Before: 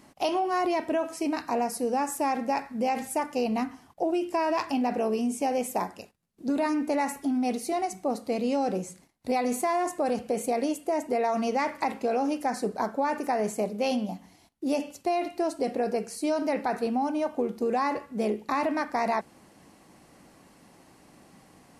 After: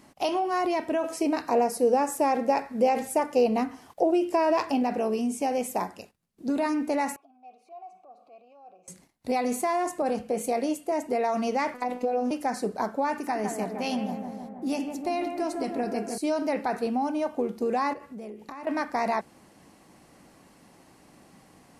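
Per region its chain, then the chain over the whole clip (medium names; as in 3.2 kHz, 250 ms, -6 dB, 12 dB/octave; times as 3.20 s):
1.04–4.83 s: peaking EQ 490 Hz +7.5 dB 0.98 oct + tape noise reduction on one side only encoder only
7.16–8.88 s: transient shaper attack -8 dB, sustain +1 dB + compression 12:1, threshold -37 dBFS + vowel filter a
10.02–10.92 s: doubling 23 ms -14 dB + three bands expanded up and down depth 40%
11.74–12.31 s: peaking EQ 520 Hz +10 dB 2 oct + compression, threshold -22 dBFS + robot voice 248 Hz
13.12–16.18 s: peaking EQ 530 Hz -8 dB 0.58 oct + bucket-brigade echo 157 ms, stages 2048, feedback 70%, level -6 dB
17.93–18.67 s: dynamic bell 4 kHz, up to -5 dB, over -51 dBFS, Q 1.4 + compression, threshold -37 dBFS
whole clip: none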